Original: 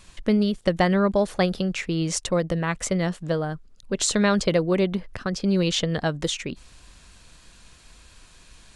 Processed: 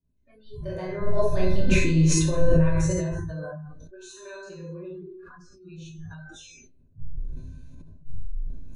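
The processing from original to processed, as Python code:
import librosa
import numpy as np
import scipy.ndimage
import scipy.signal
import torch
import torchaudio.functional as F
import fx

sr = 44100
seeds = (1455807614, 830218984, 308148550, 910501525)

y = fx.dmg_wind(x, sr, seeds[0], corner_hz=88.0, level_db=-20.0)
y = fx.doppler_pass(y, sr, speed_mps=10, closest_m=2.7, pass_at_s=1.83)
y = fx.peak_eq(y, sr, hz=320.0, db=9.0, octaves=1.4)
y = fx.comb_fb(y, sr, f0_hz=510.0, decay_s=0.62, harmonics='all', damping=0.0, mix_pct=90)
y = fx.room_shoebox(y, sr, seeds[1], volume_m3=330.0, walls='mixed', distance_m=2.6)
y = fx.noise_reduce_blind(y, sr, reduce_db=27)
y = fx.ripple_eq(y, sr, per_octave=1.5, db=9)
y = fx.sustainer(y, sr, db_per_s=24.0)
y = y * 10.0 ** (5.0 / 20.0)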